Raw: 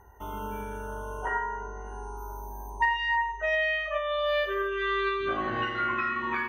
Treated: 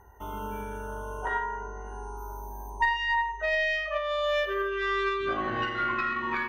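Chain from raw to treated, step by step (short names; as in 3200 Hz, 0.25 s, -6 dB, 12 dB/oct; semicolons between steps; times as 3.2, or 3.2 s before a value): tracing distortion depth 0.025 ms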